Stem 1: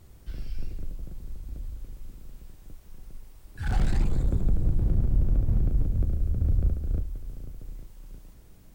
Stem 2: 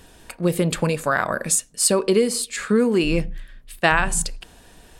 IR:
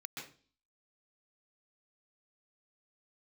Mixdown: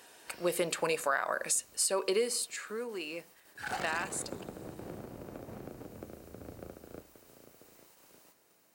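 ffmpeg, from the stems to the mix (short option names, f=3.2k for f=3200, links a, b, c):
-filter_complex "[0:a]agate=range=-6dB:threshold=-46dB:ratio=16:detection=peak,volume=2.5dB[a];[1:a]volume=-4dB,afade=t=out:st=1.99:d=0.7:silence=0.298538[b];[a][b]amix=inputs=2:normalize=0,highpass=490,bandreject=f=3.4k:w=13,alimiter=limit=-19dB:level=0:latency=1:release=167"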